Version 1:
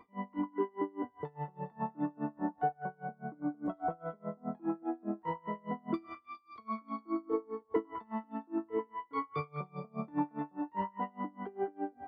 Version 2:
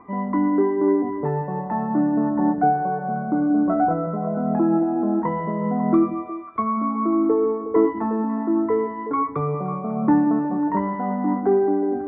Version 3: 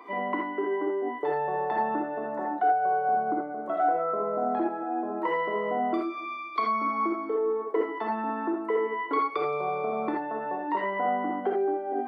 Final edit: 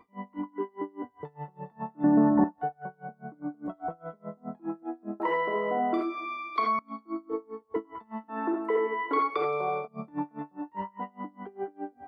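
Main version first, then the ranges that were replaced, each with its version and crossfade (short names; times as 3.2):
1
2.04–2.44 from 2
5.2–6.79 from 3
8.33–9.83 from 3, crossfade 0.10 s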